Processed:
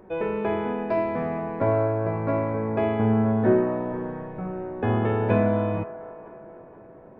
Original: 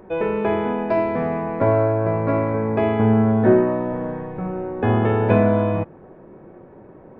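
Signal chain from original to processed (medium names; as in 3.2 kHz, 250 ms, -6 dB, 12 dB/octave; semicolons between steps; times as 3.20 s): feedback echo behind a band-pass 479 ms, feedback 45%, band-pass 870 Hz, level -13.5 dB; trim -5 dB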